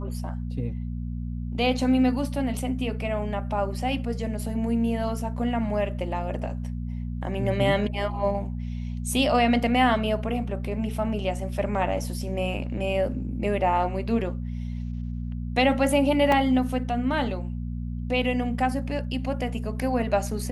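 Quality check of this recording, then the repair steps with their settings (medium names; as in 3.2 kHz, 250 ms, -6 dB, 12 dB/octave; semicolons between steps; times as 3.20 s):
hum 60 Hz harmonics 4 -31 dBFS
16.32 s: dropout 2.9 ms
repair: de-hum 60 Hz, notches 4; interpolate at 16.32 s, 2.9 ms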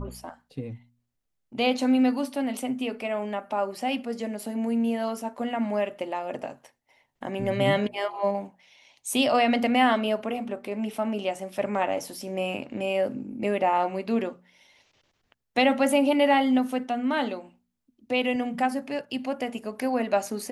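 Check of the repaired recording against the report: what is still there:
nothing left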